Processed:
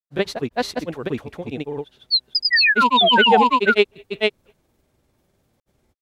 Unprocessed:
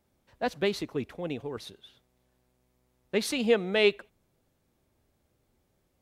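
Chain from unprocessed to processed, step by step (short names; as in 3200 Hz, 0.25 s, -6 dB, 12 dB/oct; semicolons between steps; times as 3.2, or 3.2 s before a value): painted sound fall, 2.5–3.66, 610–5100 Hz -22 dBFS; grains 0.1 s, spray 0.552 s, pitch spread up and down by 0 st; gain +8.5 dB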